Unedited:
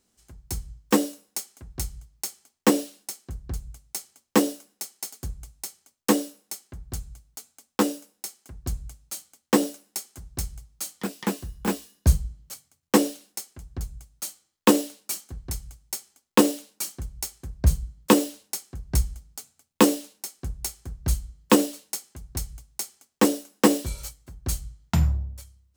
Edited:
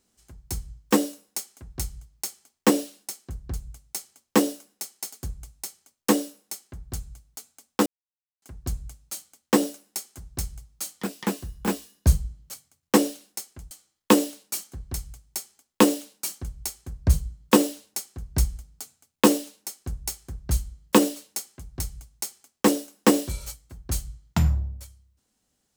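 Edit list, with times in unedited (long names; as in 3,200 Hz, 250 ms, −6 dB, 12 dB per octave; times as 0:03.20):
0:07.86–0:08.42: silence
0:13.71–0:14.28: remove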